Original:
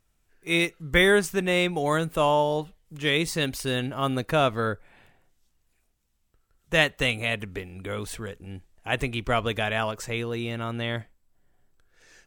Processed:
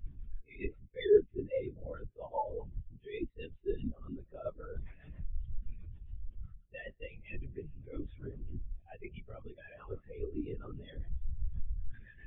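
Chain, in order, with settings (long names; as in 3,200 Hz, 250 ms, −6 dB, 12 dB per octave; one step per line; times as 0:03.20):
converter with a step at zero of −30 dBFS
parametric band 130 Hz −10 dB 0.43 octaves
reversed playback
downward compressor 5 to 1, threshold −30 dBFS, peak gain reduction 14.5 dB
reversed playback
flanger 0.52 Hz, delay 6.8 ms, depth 6.6 ms, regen +7%
rotating-speaker cabinet horn 7.5 Hz
on a send: delay with a high-pass on its return 340 ms, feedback 84%, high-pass 2,700 Hz, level −16.5 dB
on the sum: linear-prediction vocoder at 8 kHz whisper
every bin expanded away from the loudest bin 2.5 to 1
level +8.5 dB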